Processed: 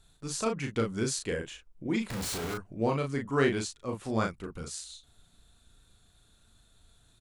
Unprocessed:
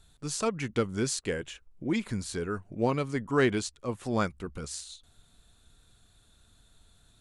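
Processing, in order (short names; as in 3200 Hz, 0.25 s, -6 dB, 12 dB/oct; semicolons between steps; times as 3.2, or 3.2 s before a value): 2.1–2.54 Schmitt trigger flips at -50.5 dBFS; doubler 36 ms -4 dB; gain -2.5 dB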